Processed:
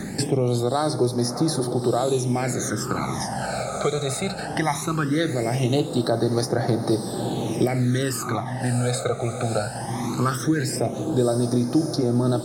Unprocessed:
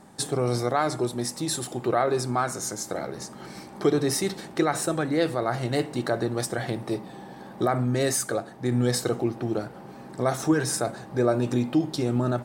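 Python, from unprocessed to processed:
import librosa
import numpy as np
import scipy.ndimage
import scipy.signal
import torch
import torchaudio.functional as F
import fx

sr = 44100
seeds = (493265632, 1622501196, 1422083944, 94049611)

y = fx.rider(x, sr, range_db=3, speed_s=0.5)
y = fx.echo_diffused(y, sr, ms=638, feedback_pct=62, wet_db=-13)
y = fx.phaser_stages(y, sr, stages=12, low_hz=300.0, high_hz=2800.0, hz=0.19, feedback_pct=30)
y = fx.band_squash(y, sr, depth_pct=70)
y = y * 10.0 ** (4.0 / 20.0)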